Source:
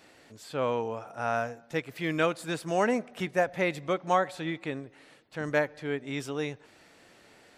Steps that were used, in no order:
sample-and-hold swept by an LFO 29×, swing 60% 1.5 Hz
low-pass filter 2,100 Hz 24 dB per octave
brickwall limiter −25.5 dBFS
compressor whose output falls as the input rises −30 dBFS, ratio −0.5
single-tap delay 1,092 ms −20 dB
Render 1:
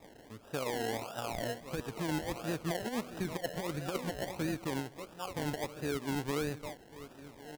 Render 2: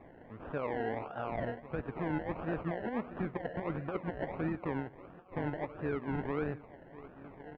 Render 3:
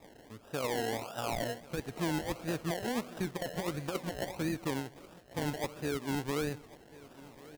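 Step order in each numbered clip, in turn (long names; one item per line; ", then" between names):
single-tap delay, then compressor whose output falls as the input rises, then low-pass filter, then brickwall limiter, then sample-and-hold swept by an LFO
compressor whose output falls as the input rises, then single-tap delay, then sample-and-hold swept by an LFO, then low-pass filter, then brickwall limiter
low-pass filter, then sample-and-hold swept by an LFO, then compressor whose output falls as the input rises, then brickwall limiter, then single-tap delay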